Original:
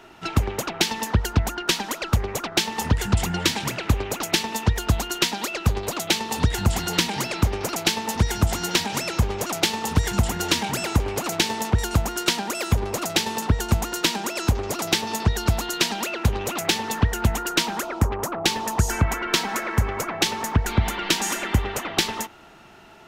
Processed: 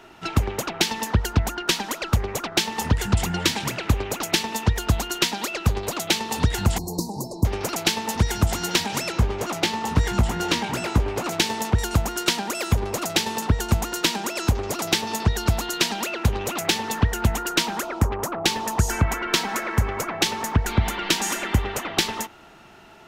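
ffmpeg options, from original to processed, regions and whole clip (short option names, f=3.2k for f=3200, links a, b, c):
-filter_complex "[0:a]asettb=1/sr,asplit=3[a][b][c];[a]atrim=end=6.784[d];[b]atrim=start=6.78:end=7.45,asetpts=PTS-STARTPTS,afade=t=in:d=0.004:c=qsin,afade=t=out:st=0.666:d=0.004:c=qsin,asuperstop=centerf=2100:order=20:qfactor=0.71,equalizer=f=2.6k:t=o:w=2.5:g=-15[e];[c]atrim=start=7.446[f];[d][e]acrossfade=d=0.004:c1=hsin:c2=qsin[g];[g][f]acrossfade=d=0.004:c1=qsin:c2=hsin,asettb=1/sr,asplit=3[h][i][j];[h]atrim=end=9.124[k];[i]atrim=start=9.12:end=11.31,asetpts=PTS-STARTPTS,afade=t=in:d=0.004:c=qsin,afade=t=out:st=2.186:d=0.004:c=qsin,highshelf=f=5.2k:g=-9,asplit=2[l][m];[m]adelay=17,volume=-8dB[n];[l][n]amix=inputs=2:normalize=0,atrim=end_sample=96579[o];[j]atrim=start=11.306[p];[k][o]acrossfade=d=0.004:c1=hsin:c2=qsin[q];[q][p]acrossfade=d=0.004:c1=qsin:c2=hsin"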